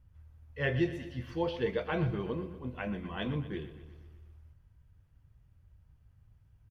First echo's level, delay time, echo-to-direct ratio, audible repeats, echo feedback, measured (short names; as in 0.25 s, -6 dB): -13.5 dB, 0.122 s, -11.5 dB, 5, 58%